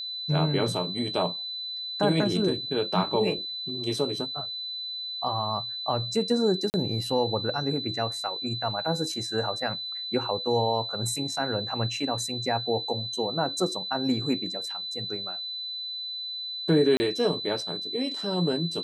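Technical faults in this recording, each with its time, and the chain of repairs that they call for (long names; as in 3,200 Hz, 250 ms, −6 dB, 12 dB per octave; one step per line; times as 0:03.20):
whistle 4,000 Hz −32 dBFS
0:06.70–0:06.74: drop-out 39 ms
0:16.97–0:17.00: drop-out 30 ms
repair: notch filter 4,000 Hz, Q 30
repair the gap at 0:06.70, 39 ms
repair the gap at 0:16.97, 30 ms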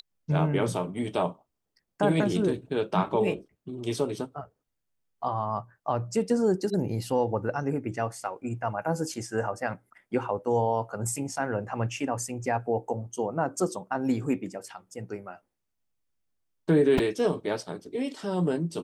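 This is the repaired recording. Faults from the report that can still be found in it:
none of them is left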